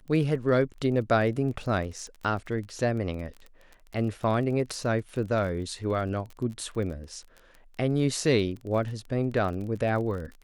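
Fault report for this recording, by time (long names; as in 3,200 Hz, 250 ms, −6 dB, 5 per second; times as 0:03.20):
surface crackle 27 per second −36 dBFS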